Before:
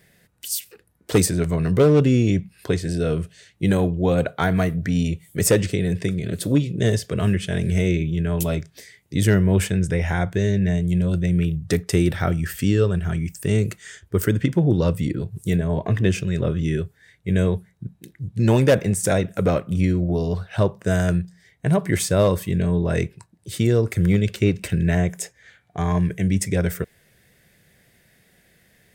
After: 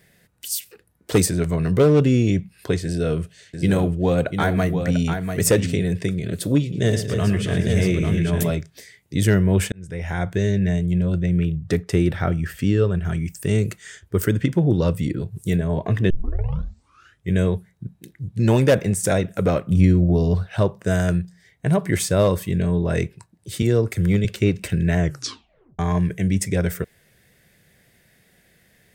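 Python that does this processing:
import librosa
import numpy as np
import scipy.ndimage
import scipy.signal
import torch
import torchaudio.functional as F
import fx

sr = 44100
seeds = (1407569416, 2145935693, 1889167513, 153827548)

y = fx.echo_single(x, sr, ms=693, db=-7.0, at=(2.84, 5.88))
y = fx.echo_multitap(y, sr, ms=(113, 275, 282, 640, 847), db=(-10.5, -9.0, -18.0, -17.5, -5.0), at=(6.61, 8.5))
y = fx.high_shelf(y, sr, hz=4600.0, db=-10.0, at=(10.86, 13.05))
y = fx.low_shelf(y, sr, hz=280.0, db=6.5, at=(19.67, 20.49))
y = fx.band_widen(y, sr, depth_pct=40, at=(23.62, 24.25))
y = fx.edit(y, sr, fx.fade_in_span(start_s=9.72, length_s=0.61),
    fx.tape_start(start_s=16.1, length_s=1.23),
    fx.tape_stop(start_s=25.0, length_s=0.79), tone=tone)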